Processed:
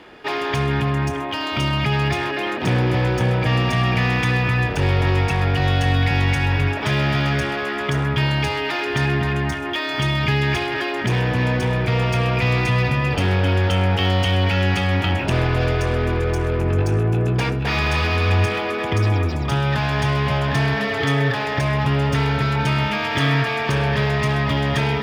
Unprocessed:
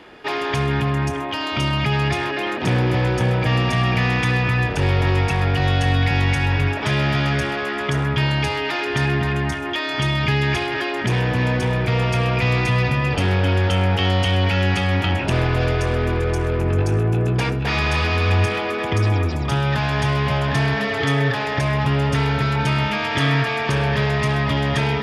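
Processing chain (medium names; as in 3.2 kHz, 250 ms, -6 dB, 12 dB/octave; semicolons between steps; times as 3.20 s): median filter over 3 samples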